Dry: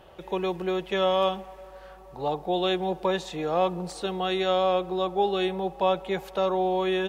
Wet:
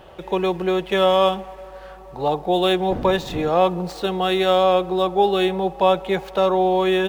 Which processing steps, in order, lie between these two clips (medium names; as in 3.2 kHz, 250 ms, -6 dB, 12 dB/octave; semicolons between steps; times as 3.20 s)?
median filter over 5 samples; 2.90–3.48 s: wind noise 290 Hz -28 dBFS; trim +7 dB